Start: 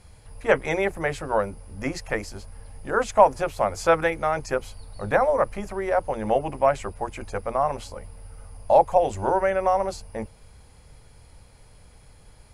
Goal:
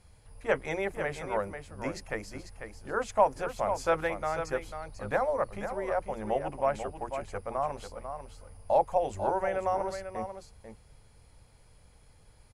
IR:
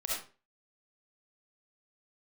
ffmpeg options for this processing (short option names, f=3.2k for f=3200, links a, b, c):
-af "aecho=1:1:494:0.376,volume=-8dB"